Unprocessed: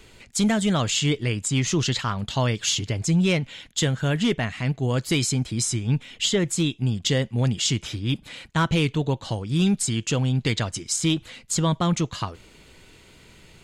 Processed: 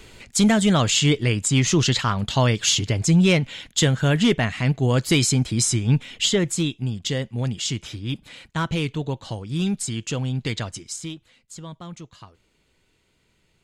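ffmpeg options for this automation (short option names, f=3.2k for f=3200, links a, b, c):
-af "volume=4dB,afade=t=out:st=5.98:d=0.94:silence=0.446684,afade=t=out:st=10.69:d=0.49:silence=0.237137"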